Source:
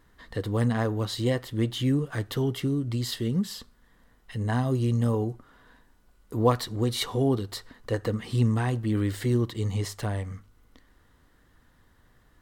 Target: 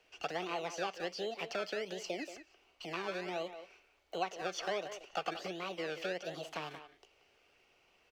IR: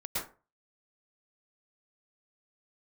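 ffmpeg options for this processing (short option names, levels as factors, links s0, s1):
-filter_complex "[0:a]equalizer=f=1100:w=7:g=-14,acrossover=split=110|730|3800[s0][s1][s2][s3];[s1]acrusher=samples=27:mix=1:aa=0.000001:lfo=1:lforange=16.2:lforate=0.9[s4];[s0][s4][s2][s3]amix=inputs=4:normalize=0,acrossover=split=3400[s5][s6];[s6]acompressor=threshold=0.00355:ratio=4:attack=1:release=60[s7];[s5][s7]amix=inputs=2:normalize=0,asetrate=67473,aresample=44100,acompressor=threshold=0.0398:ratio=6,acrossover=split=400 6100:gain=0.0708 1 0.2[s8][s9][s10];[s8][s9][s10]amix=inputs=3:normalize=0,asplit=2[s11][s12];[s12]adelay=180,highpass=300,lowpass=3400,asoftclip=type=hard:threshold=0.0335,volume=0.316[s13];[s11][s13]amix=inputs=2:normalize=0,volume=0.891"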